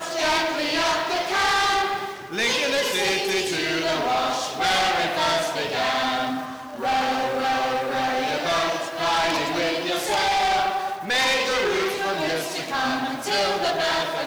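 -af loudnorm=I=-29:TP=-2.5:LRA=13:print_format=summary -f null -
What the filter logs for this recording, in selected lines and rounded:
Input Integrated:    -22.7 LUFS
Input True Peak:     -14.3 dBTP
Input LRA:             1.6 LU
Input Threshold:     -32.7 LUFS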